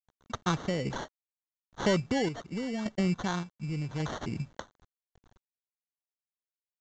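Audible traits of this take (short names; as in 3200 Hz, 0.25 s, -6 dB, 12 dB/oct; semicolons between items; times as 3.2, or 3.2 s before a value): aliases and images of a low sample rate 2500 Hz, jitter 0%; random-step tremolo, depth 80%; a quantiser's noise floor 10-bit, dither none; µ-law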